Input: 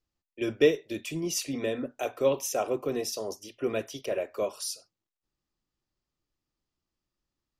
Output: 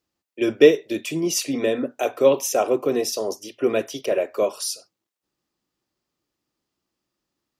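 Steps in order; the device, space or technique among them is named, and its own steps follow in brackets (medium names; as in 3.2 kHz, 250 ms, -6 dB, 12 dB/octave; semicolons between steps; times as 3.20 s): filter by subtraction (in parallel: low-pass 310 Hz 12 dB/octave + polarity flip); on the sum: trim +7 dB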